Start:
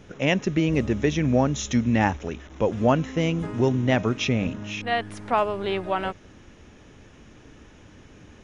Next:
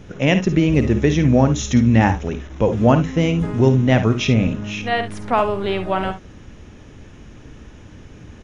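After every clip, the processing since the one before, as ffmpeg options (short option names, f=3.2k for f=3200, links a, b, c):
-filter_complex "[0:a]lowshelf=f=210:g=7,asplit=2[a][b];[b]aecho=0:1:53|70:0.282|0.2[c];[a][c]amix=inputs=2:normalize=0,volume=3.5dB"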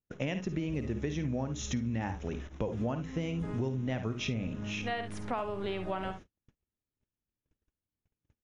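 -af "agate=range=-45dB:threshold=-33dB:ratio=16:detection=peak,acompressor=threshold=-22dB:ratio=6,volume=-8.5dB"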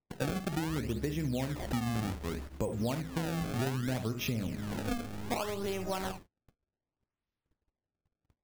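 -af "acrusher=samples=26:mix=1:aa=0.000001:lfo=1:lforange=41.6:lforate=0.65"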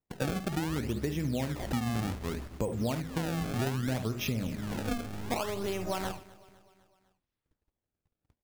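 -af "aecho=1:1:252|504|756|1008:0.0891|0.049|0.027|0.0148,volume=1.5dB"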